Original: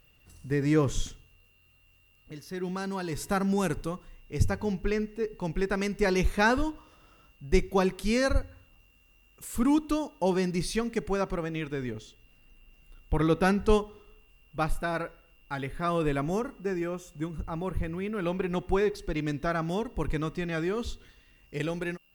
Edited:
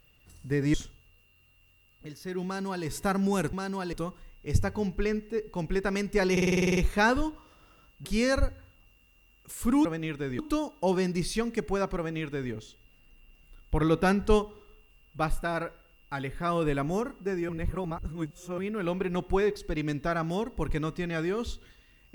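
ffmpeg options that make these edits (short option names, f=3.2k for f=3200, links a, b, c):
-filter_complex "[0:a]asplit=18[a][b][c][d][e][f][g][h][i][j][k][l][m][n][o][p][q][r];[a]atrim=end=0.742[s];[b]atrim=start=0.998:end=3.792[t];[c]atrim=start=2.708:end=3.112[u];[d]atrim=start=3.788:end=6.232[v];[e]atrim=start=6.178:end=6.232[w];[f]atrim=start=6.178:end=6.232[x];[g]atrim=start=6.178:end=6.232[y];[h]atrim=start=6.178:end=6.232[z];[i]atrim=start=6.178:end=6.232[aa];[j]atrim=start=6.178:end=6.232[ab];[k]atrim=start=6.178:end=6.232[ac];[l]atrim=start=6.178:end=6.232[ad];[m]atrim=start=6.178:end=7.462[ae];[n]atrim=start=7.978:end=9.782[af];[o]atrim=start=11.368:end=11.912[ag];[p]atrim=start=9.778:end=16.882[ah];[q]atrim=start=16.878:end=17.972,asetpts=PTS-STARTPTS,areverse[ai];[r]atrim=start=17.968[aj];[s][t]acrossfade=d=0.004:c1=hsin:c2=hsin[ak];[ak][u]acrossfade=d=0.004:c1=hsin:c2=hsin[al];[al][v]acrossfade=d=0.004:c1=hsin:c2=hsin[am];[am][w]acrossfade=d=0.004:c1=hsin:c2=hsin[an];[an][x]acrossfade=d=0.004:c1=hsin:c2=hsin[ao];[ao][y]acrossfade=d=0.004:c1=hsin:c2=hsin[ap];[ap][z]acrossfade=d=0.004:c1=hsin:c2=hsin[aq];[aq][aa]acrossfade=d=0.004:c1=hsin:c2=hsin[ar];[ar][ab]acrossfade=d=0.004:c1=hsin:c2=hsin[as];[as][ac]acrossfade=d=0.004:c1=hsin:c2=hsin[at];[at][ad]acrossfade=d=0.004:c1=hsin:c2=hsin[au];[au][ae]acrossfade=d=0.004:c1=hsin:c2=hsin[av];[av][af]acrossfade=d=0.004:c1=hsin:c2=hsin[aw];[aw][ag]acrossfade=d=0.004:c1=hsin:c2=hsin[ax];[ax][ah]acrossfade=d=0.004:c1=hsin:c2=hsin[ay];[ay][ai]acrossfade=d=0.004:c1=hsin:c2=hsin[az];[az][aj]acrossfade=d=0.004:c1=hsin:c2=hsin"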